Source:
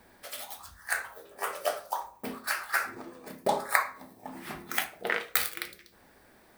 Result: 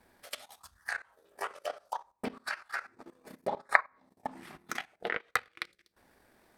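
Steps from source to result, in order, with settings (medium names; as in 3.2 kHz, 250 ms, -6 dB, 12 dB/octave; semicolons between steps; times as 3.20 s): transient shaper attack +8 dB, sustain -11 dB; level held to a coarse grid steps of 16 dB; low-pass that closes with the level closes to 2.2 kHz, closed at -27 dBFS; trim -1 dB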